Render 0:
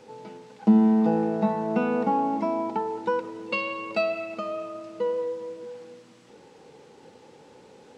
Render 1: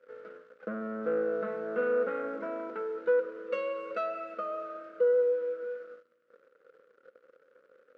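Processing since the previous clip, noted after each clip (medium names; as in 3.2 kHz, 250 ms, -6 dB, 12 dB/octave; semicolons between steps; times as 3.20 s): waveshaping leveller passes 3; two resonant band-passes 850 Hz, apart 1.4 oct; trim -5 dB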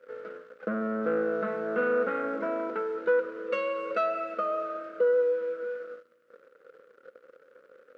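dynamic bell 480 Hz, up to -5 dB, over -38 dBFS; trim +6 dB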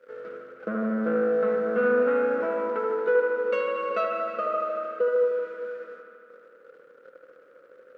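feedback echo behind a low-pass 77 ms, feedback 80%, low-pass 2.6 kHz, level -5 dB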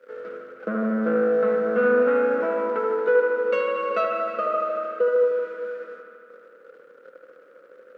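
high-pass 140 Hz 24 dB/octave; trim +3 dB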